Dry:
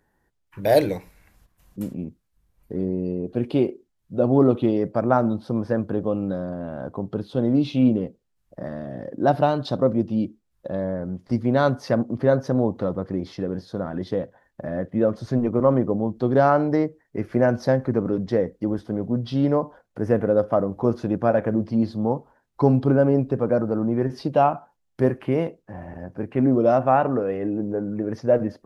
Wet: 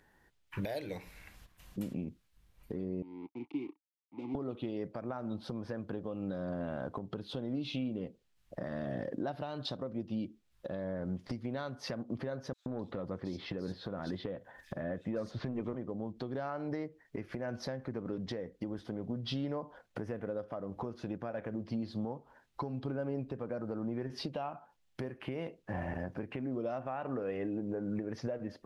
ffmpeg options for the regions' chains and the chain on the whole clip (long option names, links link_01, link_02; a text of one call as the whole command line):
ffmpeg -i in.wav -filter_complex "[0:a]asettb=1/sr,asplit=3[link_01][link_02][link_03];[link_01]atrim=end=3.024[link_04];[link_02]atrim=start=3.02:end=4.35,asetpts=PTS-STARTPTS,afade=type=in:duration=0.004:curve=qsin,afade=type=out:start_time=1.326:duration=0.004:curve=qsin,aeval=exprs='sgn(val(0))*max(abs(val(0))-0.0178,0)':channel_layout=same,acrossover=split=140|3000[link_05][link_06][link_07];[link_06]acompressor=threshold=-32dB:ratio=2:attack=3.2:release=140:knee=2.83:detection=peak[link_08];[link_05][link_08][link_07]amix=inputs=3:normalize=0,asplit=3[link_09][link_10][link_11];[link_09]bandpass=frequency=300:width_type=q:width=8,volume=0dB[link_12];[link_10]bandpass=frequency=870:width_type=q:width=8,volume=-6dB[link_13];[link_11]bandpass=frequency=2240:width_type=q:width=8,volume=-9dB[link_14];[link_12][link_13][link_14]amix=inputs=3:normalize=0[link_15];[link_03]atrim=start=4.346[link_16];[link_04][link_15]acrossfade=duration=0.004:curve1=hsin:curve2=qsin[link_17];[link_17][link_16]acrossfade=duration=0.004:curve1=qsin:curve2=hsin,asettb=1/sr,asplit=3[link_18][link_19][link_20];[link_18]atrim=end=12.534[link_21];[link_19]atrim=start=12.53:end=15.75,asetpts=PTS-STARTPTS,afade=type=in:duration=0.004:curve=qsin,afade=type=out:start_time=3.216:duration=0.004:curve=qsin,acontrast=81,acrossover=split=4100[link_22][link_23];[link_22]adelay=130[link_24];[link_24][link_23]amix=inputs=2:normalize=0,atrim=end_sample=142002[link_25];[link_20]atrim=start=15.746[link_26];[link_21][link_25]acrossfade=duration=0.004:curve1=hsin:curve2=qsin[link_27];[link_27][link_26]acrossfade=duration=0.004:curve1=qsin:curve2=hsin,equalizer=frequency=3000:width_type=o:width=1.9:gain=8,acompressor=threshold=-31dB:ratio=16,alimiter=level_in=3dB:limit=-24dB:level=0:latency=1:release=221,volume=-3dB" out.wav